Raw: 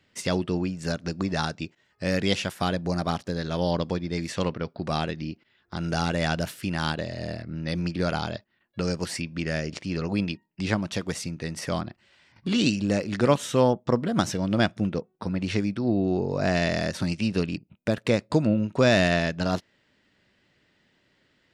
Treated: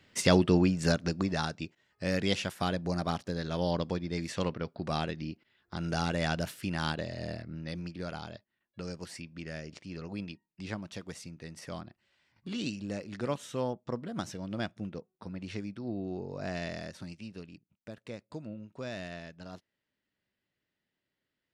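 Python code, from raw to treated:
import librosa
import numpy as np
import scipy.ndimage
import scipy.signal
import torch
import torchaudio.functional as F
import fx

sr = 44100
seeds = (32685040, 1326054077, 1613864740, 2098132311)

y = fx.gain(x, sr, db=fx.line((0.82, 3.0), (1.4, -5.0), (7.38, -5.0), (7.93, -12.5), (16.69, -12.5), (17.42, -20.0)))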